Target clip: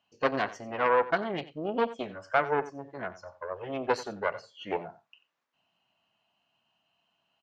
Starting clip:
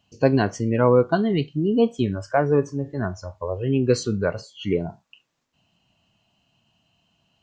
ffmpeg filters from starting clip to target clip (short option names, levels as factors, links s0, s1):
-af "aeval=exprs='0.596*(cos(1*acos(clip(val(0)/0.596,-1,1)))-cos(1*PI/2))+0.168*(cos(4*acos(clip(val(0)/0.596,-1,1)))-cos(4*PI/2))+0.0188*(cos(8*acos(clip(val(0)/0.596,-1,1)))-cos(8*PI/2))':c=same,bandpass=f=1300:t=q:w=0.7:csg=0,aecho=1:1:90:0.15,volume=0.708"